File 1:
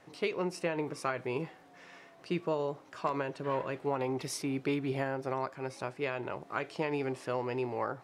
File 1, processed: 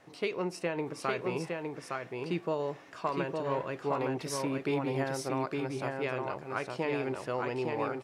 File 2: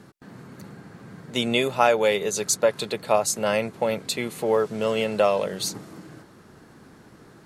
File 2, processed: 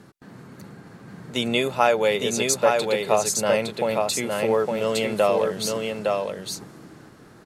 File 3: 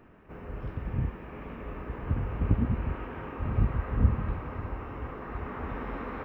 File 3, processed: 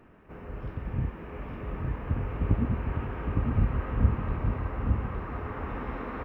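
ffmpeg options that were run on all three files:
ffmpeg -i in.wav -filter_complex "[0:a]asplit=2[link_01][link_02];[link_02]aecho=0:1:861:0.668[link_03];[link_01][link_03]amix=inputs=2:normalize=0" -ar 48000 -c:a libmp3lame -b:a 224k out.mp3

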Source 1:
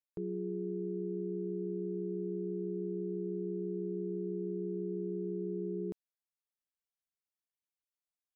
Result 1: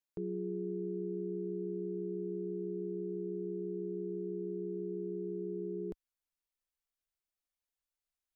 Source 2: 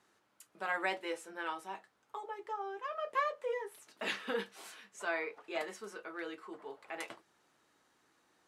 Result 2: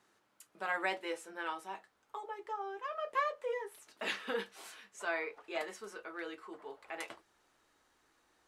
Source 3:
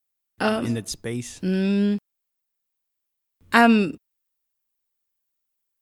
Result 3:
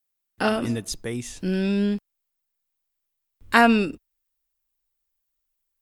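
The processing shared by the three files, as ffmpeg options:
ffmpeg -i in.wav -af "asubboost=boost=7.5:cutoff=53" out.wav

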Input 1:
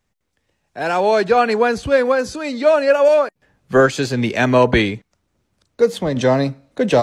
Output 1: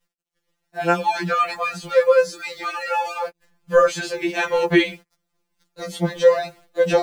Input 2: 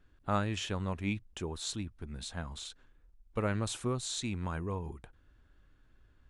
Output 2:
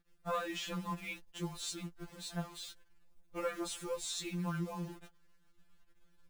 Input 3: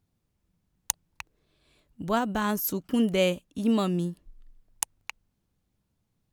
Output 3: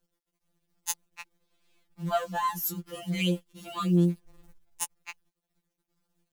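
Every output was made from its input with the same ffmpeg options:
ffmpeg -i in.wav -af "acrusher=bits=9:dc=4:mix=0:aa=0.000001,afftfilt=real='re*2.83*eq(mod(b,8),0)':imag='im*2.83*eq(mod(b,8),0)':win_size=2048:overlap=0.75" out.wav

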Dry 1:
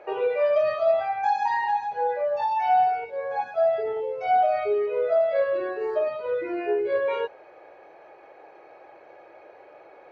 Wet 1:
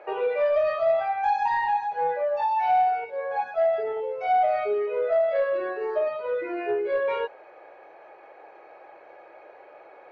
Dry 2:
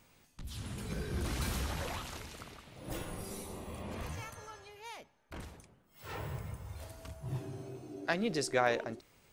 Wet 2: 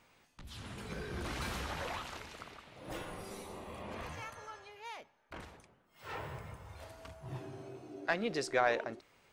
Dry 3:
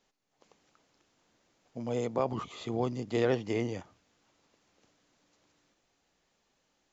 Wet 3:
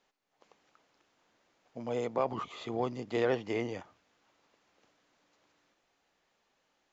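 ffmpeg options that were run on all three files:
ffmpeg -i in.wav -filter_complex "[0:a]asplit=2[link_01][link_02];[link_02]highpass=frequency=720:poles=1,volume=9dB,asoftclip=type=tanh:threshold=-12.5dB[link_03];[link_01][link_03]amix=inputs=2:normalize=0,lowpass=frequency=2400:poles=1,volume=-6dB,volume=-1.5dB" out.wav

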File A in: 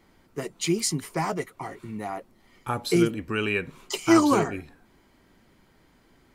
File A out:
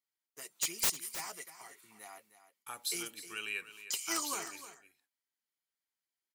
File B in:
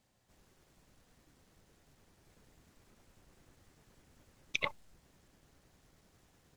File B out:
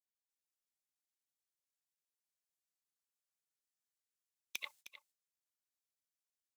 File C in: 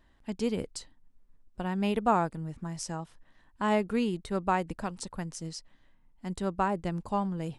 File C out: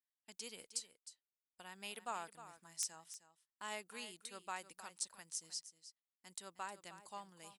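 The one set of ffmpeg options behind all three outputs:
ffmpeg -i in.wav -af "agate=range=-22dB:threshold=-48dB:ratio=16:detection=peak,aderivative,aeval=exprs='(mod(12.6*val(0)+1,2)-1)/12.6':channel_layout=same,aecho=1:1:310:0.224" out.wav

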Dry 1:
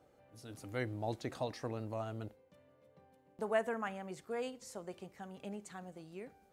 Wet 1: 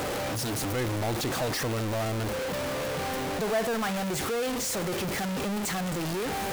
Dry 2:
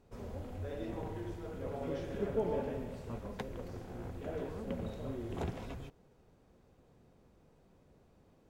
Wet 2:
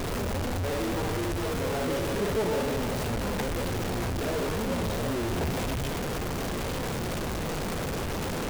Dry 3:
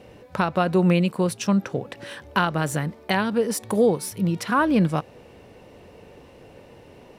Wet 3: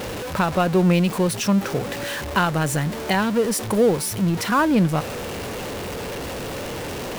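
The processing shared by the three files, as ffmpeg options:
ffmpeg -i in.wav -af "aeval=exprs='val(0)+0.5*0.0562*sgn(val(0))':channel_layout=same" out.wav

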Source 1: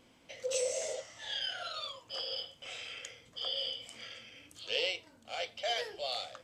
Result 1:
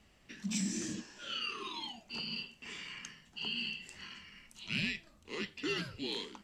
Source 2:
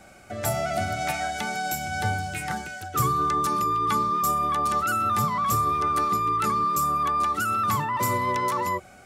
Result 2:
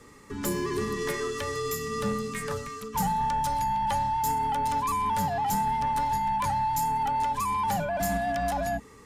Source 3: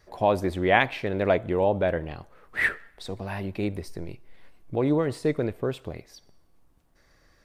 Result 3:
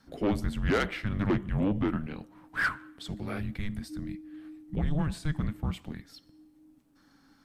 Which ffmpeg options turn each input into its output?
ffmpeg -i in.wav -af "afreqshift=-310,asoftclip=type=tanh:threshold=-18.5dB,volume=-1.5dB" out.wav

